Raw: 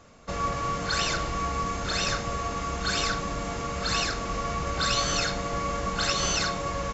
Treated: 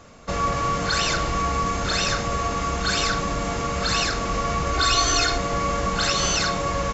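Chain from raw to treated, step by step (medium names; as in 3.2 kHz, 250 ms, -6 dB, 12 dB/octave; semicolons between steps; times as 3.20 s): 4.73–5.38 s: comb 2.8 ms, depth 81%; in parallel at 0 dB: peak limiter -21 dBFS, peak gain reduction 11 dB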